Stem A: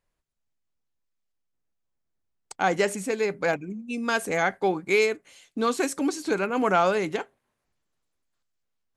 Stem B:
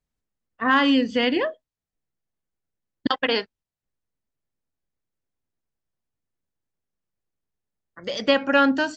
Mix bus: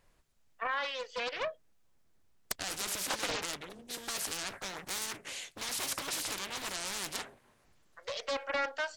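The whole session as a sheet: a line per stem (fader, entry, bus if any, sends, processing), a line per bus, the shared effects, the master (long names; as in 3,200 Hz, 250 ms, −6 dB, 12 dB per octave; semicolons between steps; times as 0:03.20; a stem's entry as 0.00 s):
−6.0 dB, 0.00 s, no send, every bin compressed towards the loudest bin 10 to 1
−8.5 dB, 0.00 s, no send, brickwall limiter −14 dBFS, peak gain reduction 7.5 dB; Butterworth high-pass 470 Hz 48 dB per octave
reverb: not used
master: highs frequency-modulated by the lows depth 0.92 ms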